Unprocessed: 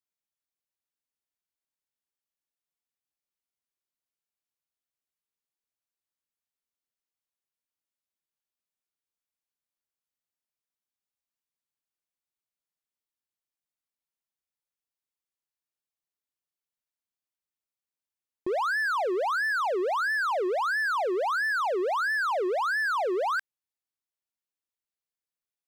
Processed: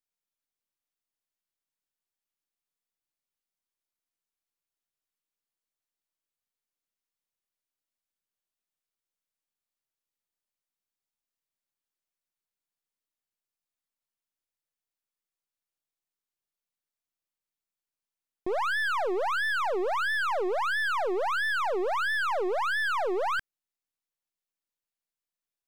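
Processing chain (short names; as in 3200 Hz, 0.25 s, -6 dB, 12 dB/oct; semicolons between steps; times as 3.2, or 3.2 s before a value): half-wave gain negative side -7 dB; gain +1.5 dB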